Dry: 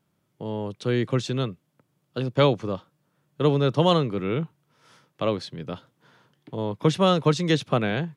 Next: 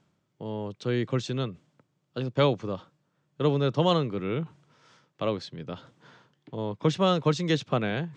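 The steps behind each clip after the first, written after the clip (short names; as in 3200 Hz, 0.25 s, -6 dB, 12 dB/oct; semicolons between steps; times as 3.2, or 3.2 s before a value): steep low-pass 7900 Hz 36 dB/oct; reverse; upward compressor, threshold -40 dBFS; reverse; gain -3.5 dB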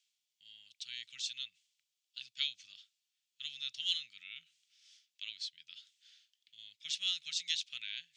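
inverse Chebyshev high-pass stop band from 1100 Hz, stop band 50 dB; gain +1.5 dB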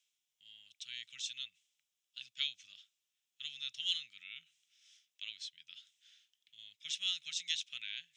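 bell 4500 Hz -11.5 dB 0.21 oct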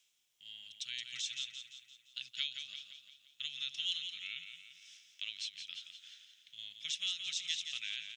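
compressor 2:1, threshold -47 dBFS, peak gain reduction 10.5 dB; on a send: feedback echo 0.172 s, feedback 51%, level -7.5 dB; on the sum: gain +7 dB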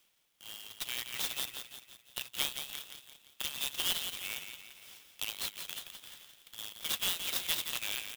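clock jitter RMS 0.042 ms; gain +4.5 dB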